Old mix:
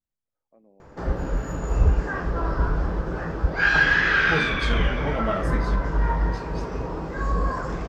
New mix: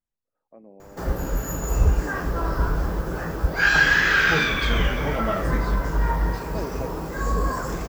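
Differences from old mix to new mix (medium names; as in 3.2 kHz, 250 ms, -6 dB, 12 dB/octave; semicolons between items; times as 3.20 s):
first voice +9.5 dB; background: remove distance through air 150 m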